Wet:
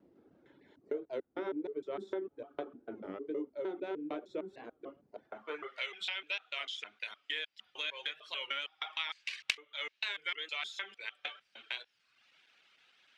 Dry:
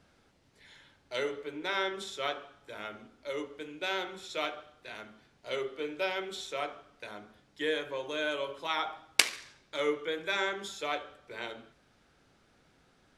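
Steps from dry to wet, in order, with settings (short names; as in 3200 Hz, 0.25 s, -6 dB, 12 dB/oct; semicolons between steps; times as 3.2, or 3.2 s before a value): slices in reverse order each 0.152 s, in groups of 3; reverb removal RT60 0.7 s; added harmonics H 8 -29 dB, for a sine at -3 dBFS; band-pass sweep 330 Hz -> 2800 Hz, 5.01–5.9; compressor 3:1, threshold -48 dBFS, peak gain reduction 20 dB; record warp 33 1/3 rpm, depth 160 cents; gain +11.5 dB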